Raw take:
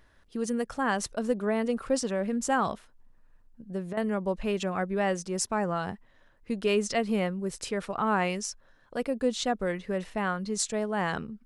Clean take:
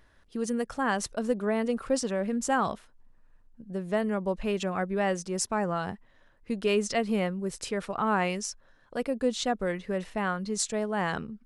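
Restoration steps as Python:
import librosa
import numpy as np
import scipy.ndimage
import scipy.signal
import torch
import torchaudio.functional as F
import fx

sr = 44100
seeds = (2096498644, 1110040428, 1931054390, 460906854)

y = fx.fix_interpolate(x, sr, at_s=(3.93,), length_ms=40.0)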